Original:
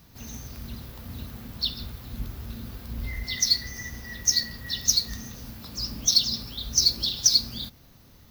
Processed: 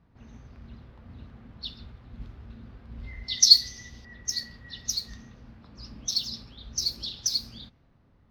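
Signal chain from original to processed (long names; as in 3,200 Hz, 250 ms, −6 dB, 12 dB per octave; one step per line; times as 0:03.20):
low-pass that shuts in the quiet parts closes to 1,600 Hz, open at −17.5 dBFS
0:03.28–0:04.05: high shelf with overshoot 2,700 Hz +12.5 dB, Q 1.5
level −7.5 dB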